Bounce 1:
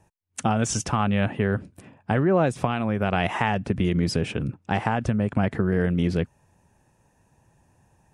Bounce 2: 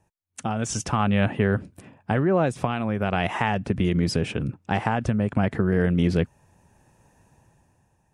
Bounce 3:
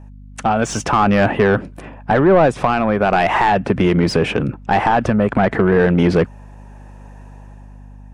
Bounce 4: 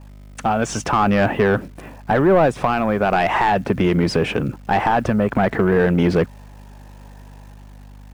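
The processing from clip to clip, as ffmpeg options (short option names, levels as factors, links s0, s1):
-af "dynaudnorm=f=160:g=11:m=4.73,volume=0.501"
-filter_complex "[0:a]asplit=2[s0][s1];[s1]highpass=f=720:p=1,volume=10,asoftclip=type=tanh:threshold=0.473[s2];[s0][s2]amix=inputs=2:normalize=0,lowpass=f=1200:p=1,volume=0.501,aeval=exprs='val(0)+0.00794*(sin(2*PI*50*n/s)+sin(2*PI*2*50*n/s)/2+sin(2*PI*3*50*n/s)/3+sin(2*PI*4*50*n/s)/4+sin(2*PI*5*50*n/s)/5)':c=same,volume=1.78"
-af "acrusher=bits=9:dc=4:mix=0:aa=0.000001,volume=0.75"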